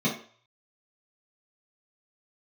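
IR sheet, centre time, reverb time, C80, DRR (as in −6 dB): 26 ms, 0.45 s, 12.0 dB, −7.0 dB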